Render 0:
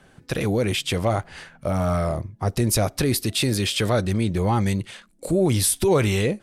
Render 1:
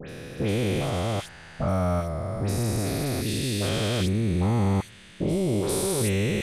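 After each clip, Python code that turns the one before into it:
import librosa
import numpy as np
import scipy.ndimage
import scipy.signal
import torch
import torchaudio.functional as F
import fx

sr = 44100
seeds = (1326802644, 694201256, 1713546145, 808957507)

y = fx.spec_steps(x, sr, hold_ms=400)
y = fx.dispersion(y, sr, late='highs', ms=92.0, hz=2500.0)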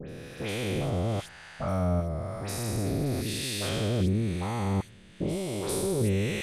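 y = fx.harmonic_tremolo(x, sr, hz=1.0, depth_pct=70, crossover_hz=640.0)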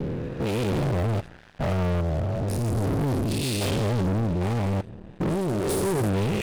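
y = fx.wiener(x, sr, points=41)
y = fx.leveller(y, sr, passes=5)
y = F.gain(torch.from_numpy(y), -4.5).numpy()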